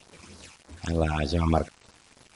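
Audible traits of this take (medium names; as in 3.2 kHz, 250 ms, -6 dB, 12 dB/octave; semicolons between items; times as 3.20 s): phasing stages 8, 3.3 Hz, lowest notch 470–2800 Hz; a quantiser's noise floor 8-bit, dither none; MP3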